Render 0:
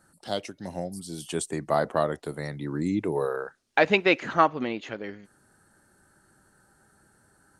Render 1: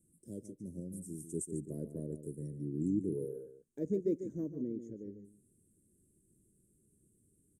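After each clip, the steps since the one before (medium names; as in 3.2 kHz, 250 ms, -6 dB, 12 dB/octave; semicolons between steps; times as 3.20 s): inverse Chebyshev band-stop 720–4500 Hz, stop band 40 dB; echo from a far wall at 25 m, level -10 dB; trim -6.5 dB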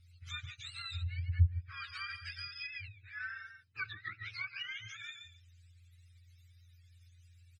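spectrum inverted on a logarithmic axis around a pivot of 850 Hz; comb 0.8 ms, depth 34%; low-pass that closes with the level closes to 400 Hz, closed at -33.5 dBFS; trim +4.5 dB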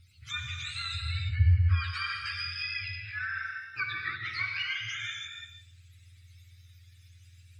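gated-style reverb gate 360 ms flat, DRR 1.5 dB; trim +7 dB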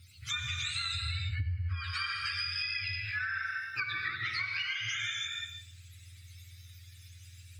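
high-pass 69 Hz; treble shelf 5.3 kHz +7 dB; compression 10:1, threshold -35 dBFS, peak gain reduction 15.5 dB; trim +4 dB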